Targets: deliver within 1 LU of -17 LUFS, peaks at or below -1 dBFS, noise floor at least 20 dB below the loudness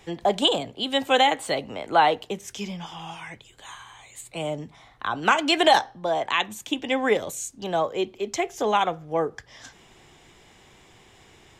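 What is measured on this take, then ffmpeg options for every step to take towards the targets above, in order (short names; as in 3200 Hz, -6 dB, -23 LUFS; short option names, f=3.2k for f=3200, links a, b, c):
loudness -24.0 LUFS; peak -7.0 dBFS; loudness target -17.0 LUFS
-> -af "volume=7dB,alimiter=limit=-1dB:level=0:latency=1"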